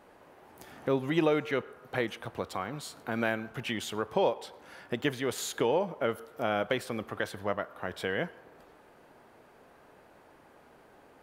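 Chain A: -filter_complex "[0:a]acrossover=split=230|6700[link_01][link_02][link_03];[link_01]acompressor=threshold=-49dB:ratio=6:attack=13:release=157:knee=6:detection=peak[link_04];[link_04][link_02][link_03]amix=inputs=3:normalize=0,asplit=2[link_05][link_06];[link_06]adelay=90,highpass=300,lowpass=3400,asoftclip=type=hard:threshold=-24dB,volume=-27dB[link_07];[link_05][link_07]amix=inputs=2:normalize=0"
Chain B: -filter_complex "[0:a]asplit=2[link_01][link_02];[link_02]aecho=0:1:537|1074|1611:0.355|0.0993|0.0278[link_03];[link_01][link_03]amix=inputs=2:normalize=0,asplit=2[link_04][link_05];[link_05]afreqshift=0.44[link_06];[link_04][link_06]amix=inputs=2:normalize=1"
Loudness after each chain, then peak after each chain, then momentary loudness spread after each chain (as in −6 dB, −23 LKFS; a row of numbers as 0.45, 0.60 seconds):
−33.0, −36.0 LKFS; −15.0, −17.0 dBFS; 11, 12 LU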